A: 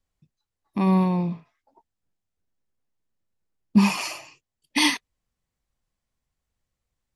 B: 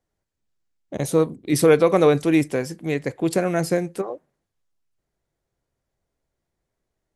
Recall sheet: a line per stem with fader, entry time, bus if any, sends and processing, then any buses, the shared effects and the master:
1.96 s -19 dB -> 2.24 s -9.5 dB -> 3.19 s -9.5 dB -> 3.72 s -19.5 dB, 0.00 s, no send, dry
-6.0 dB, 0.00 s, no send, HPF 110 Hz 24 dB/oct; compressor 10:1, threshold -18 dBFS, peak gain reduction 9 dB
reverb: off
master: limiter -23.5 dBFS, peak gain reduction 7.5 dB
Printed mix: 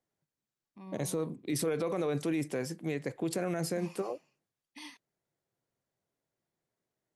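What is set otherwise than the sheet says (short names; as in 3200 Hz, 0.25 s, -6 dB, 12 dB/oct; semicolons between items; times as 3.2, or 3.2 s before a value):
stem A -19.0 dB -> -27.0 dB; stem B: missing compressor 10:1, threshold -18 dBFS, peak gain reduction 9 dB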